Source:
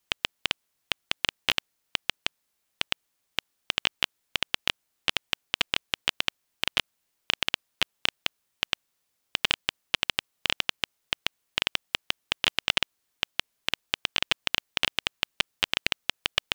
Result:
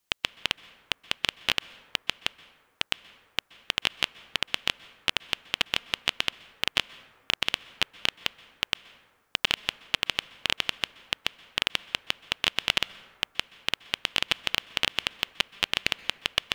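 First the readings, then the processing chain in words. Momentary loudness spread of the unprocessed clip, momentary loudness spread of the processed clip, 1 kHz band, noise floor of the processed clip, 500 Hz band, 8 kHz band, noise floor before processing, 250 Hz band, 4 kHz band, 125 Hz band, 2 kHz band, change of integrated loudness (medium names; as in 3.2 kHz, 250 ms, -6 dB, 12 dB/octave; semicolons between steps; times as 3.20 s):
8 LU, 8 LU, 0.0 dB, -68 dBFS, 0.0 dB, 0.0 dB, -77 dBFS, 0.0 dB, 0.0 dB, 0.0 dB, 0.0 dB, 0.0 dB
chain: plate-style reverb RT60 1.7 s, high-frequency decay 0.4×, pre-delay 115 ms, DRR 18.5 dB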